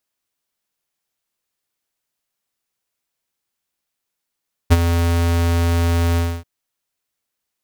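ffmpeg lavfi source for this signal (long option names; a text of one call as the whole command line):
ffmpeg -f lavfi -i "aevalsrc='0.422*(2*lt(mod(84.9*t,1),0.5)-1)':duration=1.737:sample_rate=44100,afade=type=in:duration=0.023,afade=type=out:start_time=0.023:duration=0.035:silence=0.355,afade=type=out:start_time=1.47:duration=0.267" out.wav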